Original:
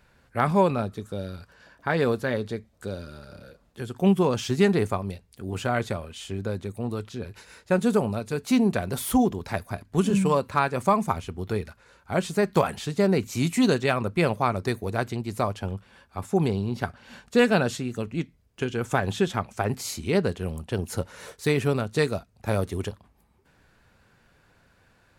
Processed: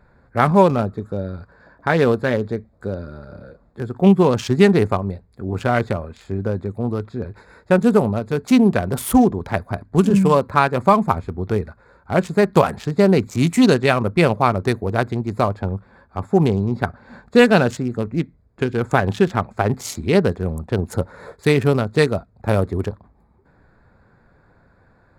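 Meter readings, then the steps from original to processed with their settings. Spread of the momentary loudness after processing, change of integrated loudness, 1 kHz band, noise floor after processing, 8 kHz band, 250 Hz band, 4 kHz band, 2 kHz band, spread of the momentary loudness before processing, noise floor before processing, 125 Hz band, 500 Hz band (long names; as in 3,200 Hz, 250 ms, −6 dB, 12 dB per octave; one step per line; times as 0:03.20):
14 LU, +7.0 dB, +7.0 dB, −56 dBFS, +2.0 dB, +7.5 dB, +4.5 dB, +6.5 dB, 13 LU, −62 dBFS, +7.5 dB, +7.5 dB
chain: adaptive Wiener filter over 15 samples
level +7.5 dB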